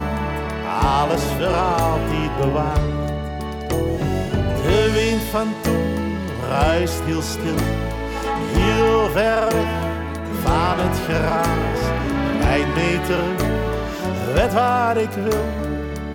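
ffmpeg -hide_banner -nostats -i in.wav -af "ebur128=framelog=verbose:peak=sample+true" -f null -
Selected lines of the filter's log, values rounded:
Integrated loudness:
  I:         -20.4 LUFS
  Threshold: -30.3 LUFS
Loudness range:
  LRA:         1.8 LU
  Threshold: -40.3 LUFS
  LRA low:   -21.2 LUFS
  LRA high:  -19.4 LUFS
Sample peak:
  Peak:       -6.9 dBFS
True peak:
  Peak:       -6.8 dBFS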